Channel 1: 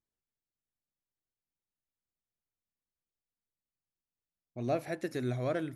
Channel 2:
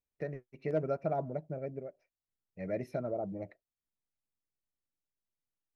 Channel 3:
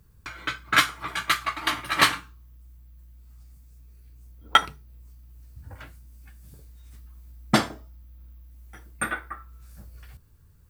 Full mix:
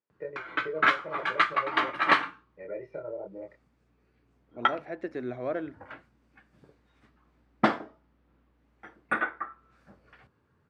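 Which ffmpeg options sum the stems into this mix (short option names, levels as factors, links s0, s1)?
-filter_complex "[0:a]volume=1.26[s0];[1:a]aecho=1:1:2.1:0.98,acompressor=threshold=0.0251:ratio=3,flanger=delay=22.5:depth=3.5:speed=0.47,volume=1.26[s1];[2:a]adelay=100,volume=1.33[s2];[s0][s1][s2]amix=inputs=3:normalize=0,highpass=260,lowpass=2000,alimiter=limit=0.376:level=0:latency=1:release=375"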